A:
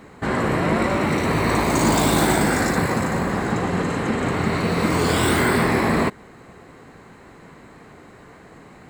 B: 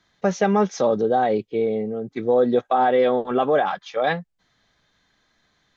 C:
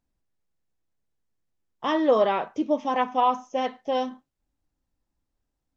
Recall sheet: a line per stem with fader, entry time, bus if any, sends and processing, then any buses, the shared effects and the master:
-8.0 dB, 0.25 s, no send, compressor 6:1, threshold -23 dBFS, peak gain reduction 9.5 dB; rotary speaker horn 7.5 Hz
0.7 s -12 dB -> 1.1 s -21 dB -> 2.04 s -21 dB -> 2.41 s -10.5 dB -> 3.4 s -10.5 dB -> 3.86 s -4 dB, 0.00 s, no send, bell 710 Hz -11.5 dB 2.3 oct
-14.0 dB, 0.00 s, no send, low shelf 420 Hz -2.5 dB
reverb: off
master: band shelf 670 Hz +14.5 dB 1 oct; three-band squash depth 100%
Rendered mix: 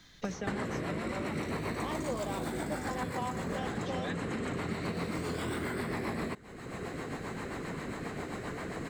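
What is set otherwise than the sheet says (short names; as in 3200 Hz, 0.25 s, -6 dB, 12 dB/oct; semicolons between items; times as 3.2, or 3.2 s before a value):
stem B -12.0 dB -> -19.5 dB; master: missing band shelf 670 Hz +14.5 dB 1 oct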